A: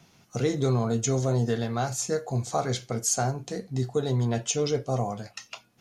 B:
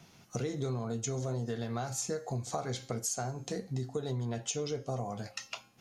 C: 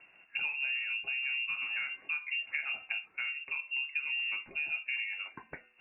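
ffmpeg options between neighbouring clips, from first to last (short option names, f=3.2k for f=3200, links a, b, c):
-af "bandreject=f=267.3:t=h:w=4,bandreject=f=534.6:t=h:w=4,bandreject=f=801.9:t=h:w=4,bandreject=f=1.0692k:t=h:w=4,bandreject=f=1.3365k:t=h:w=4,bandreject=f=1.6038k:t=h:w=4,bandreject=f=1.8711k:t=h:w=4,bandreject=f=2.1384k:t=h:w=4,bandreject=f=2.4057k:t=h:w=4,bandreject=f=2.673k:t=h:w=4,bandreject=f=2.9403k:t=h:w=4,bandreject=f=3.2076k:t=h:w=4,bandreject=f=3.4749k:t=h:w=4,bandreject=f=3.7422k:t=h:w=4,bandreject=f=4.0095k:t=h:w=4,bandreject=f=4.2768k:t=h:w=4,bandreject=f=4.5441k:t=h:w=4,bandreject=f=4.8114k:t=h:w=4,bandreject=f=5.0787k:t=h:w=4,bandreject=f=5.346k:t=h:w=4,bandreject=f=5.6133k:t=h:w=4,bandreject=f=5.8806k:t=h:w=4,bandreject=f=6.1479k:t=h:w=4,bandreject=f=6.4152k:t=h:w=4,bandreject=f=6.6825k:t=h:w=4,bandreject=f=6.9498k:t=h:w=4,bandreject=f=7.2171k:t=h:w=4,bandreject=f=7.4844k:t=h:w=4,bandreject=f=7.7517k:t=h:w=4,acompressor=threshold=-32dB:ratio=6"
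-af "highpass=59,lowpass=f=2.5k:t=q:w=0.5098,lowpass=f=2.5k:t=q:w=0.6013,lowpass=f=2.5k:t=q:w=0.9,lowpass=f=2.5k:t=q:w=2.563,afreqshift=-2900"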